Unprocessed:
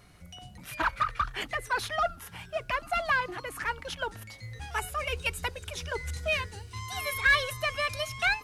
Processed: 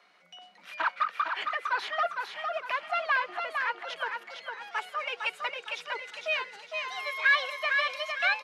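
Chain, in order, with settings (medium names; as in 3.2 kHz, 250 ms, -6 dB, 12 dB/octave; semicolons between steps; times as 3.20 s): steep high-pass 170 Hz 96 dB/octave; three-band isolator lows -19 dB, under 510 Hz, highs -22 dB, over 4.9 kHz; feedback delay 457 ms, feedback 39%, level -5 dB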